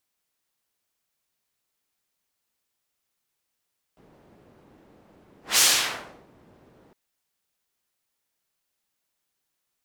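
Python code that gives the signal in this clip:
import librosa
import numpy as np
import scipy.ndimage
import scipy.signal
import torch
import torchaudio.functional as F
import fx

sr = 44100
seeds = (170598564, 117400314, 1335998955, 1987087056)

y = fx.whoosh(sr, seeds[0], length_s=2.96, peak_s=1.62, rise_s=0.18, fall_s=0.74, ends_hz=320.0, peak_hz=6500.0, q=0.73, swell_db=39.0)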